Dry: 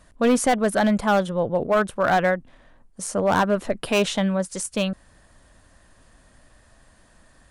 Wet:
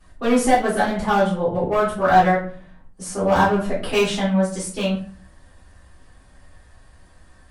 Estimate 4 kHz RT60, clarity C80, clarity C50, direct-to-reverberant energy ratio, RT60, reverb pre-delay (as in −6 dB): 0.30 s, 11.0 dB, 6.5 dB, −10.0 dB, 0.45 s, 3 ms